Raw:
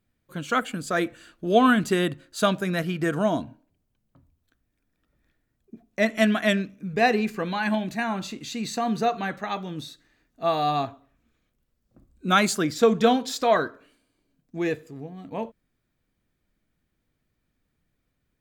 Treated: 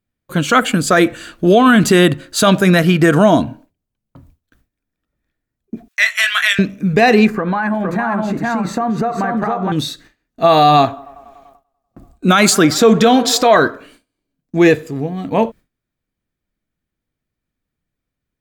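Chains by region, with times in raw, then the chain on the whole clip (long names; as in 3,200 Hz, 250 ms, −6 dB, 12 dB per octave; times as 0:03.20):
0:05.88–0:06.59: high-pass filter 1,400 Hz 24 dB per octave + double-tracking delay 20 ms −7 dB
0:07.27–0:09.72: high shelf with overshoot 2,100 Hz −13.5 dB, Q 1.5 + single-tap delay 462 ms −5 dB + downward compressor 16 to 1, threshold −30 dBFS
0:10.77–0:13.60: parametric band 77 Hz −3 dB 2.6 octaves + delay with a band-pass on its return 97 ms, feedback 80%, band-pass 760 Hz, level −23.5 dB
whole clip: noise gate with hold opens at −52 dBFS; boost into a limiter +17.5 dB; level −1 dB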